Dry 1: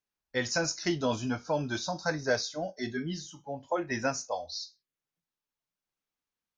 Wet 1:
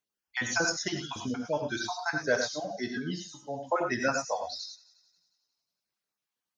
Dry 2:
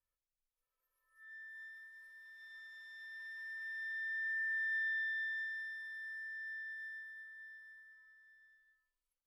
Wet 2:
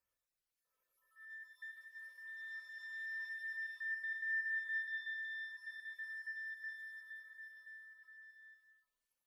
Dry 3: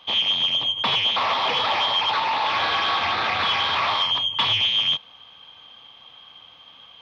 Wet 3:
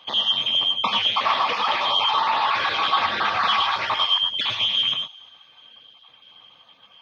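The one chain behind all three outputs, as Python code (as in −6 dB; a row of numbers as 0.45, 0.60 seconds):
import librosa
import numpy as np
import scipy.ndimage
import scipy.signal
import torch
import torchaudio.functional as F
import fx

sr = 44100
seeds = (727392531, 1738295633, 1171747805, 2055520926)

y = fx.spec_dropout(x, sr, seeds[0], share_pct=30)
y = fx.dereverb_blind(y, sr, rt60_s=0.53)
y = fx.highpass(y, sr, hz=120.0, slope=6)
y = fx.dynamic_eq(y, sr, hz=1200.0, q=2.8, threshold_db=-41.0, ratio=4.0, max_db=5)
y = fx.rider(y, sr, range_db=4, speed_s=2.0)
y = fx.echo_wet_highpass(y, sr, ms=179, feedback_pct=52, hz=3700.0, wet_db=-18.5)
y = fx.rev_gated(y, sr, seeds[1], gate_ms=130, shape='rising', drr_db=4.0)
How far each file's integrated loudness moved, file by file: +1.0, −2.5, 0.0 LU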